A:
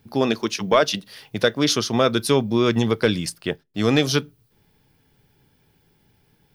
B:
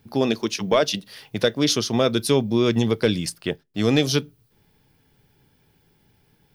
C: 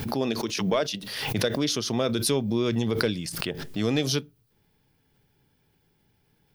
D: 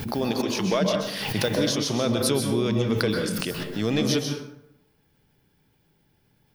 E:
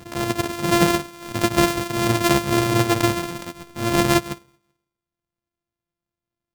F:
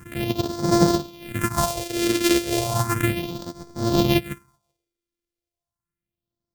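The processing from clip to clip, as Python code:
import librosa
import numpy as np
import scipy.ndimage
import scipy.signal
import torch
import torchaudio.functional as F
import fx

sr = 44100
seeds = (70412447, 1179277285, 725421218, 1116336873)

y1 = fx.dynamic_eq(x, sr, hz=1300.0, q=1.1, threshold_db=-35.0, ratio=4.0, max_db=-6)
y2 = fx.pre_swell(y1, sr, db_per_s=42.0)
y2 = F.gain(torch.from_numpy(y2), -6.5).numpy()
y3 = fx.rev_plate(y2, sr, seeds[0], rt60_s=0.82, hf_ratio=0.55, predelay_ms=115, drr_db=2.5)
y4 = np.r_[np.sort(y3[:len(y3) // 128 * 128].reshape(-1, 128), axis=1).ravel(), y3[len(y3) // 128 * 128:]]
y4 = y4 + 10.0 ** (-19.0 / 20.0) * np.pad(y4, (int(384 * sr / 1000.0), 0))[:len(y4)]
y4 = fx.upward_expand(y4, sr, threshold_db=-41.0, expansion=2.5)
y4 = F.gain(torch.from_numpy(y4), 8.0).numpy()
y5 = fx.phaser_stages(y4, sr, stages=4, low_hz=140.0, high_hz=2600.0, hz=0.34, feedback_pct=30)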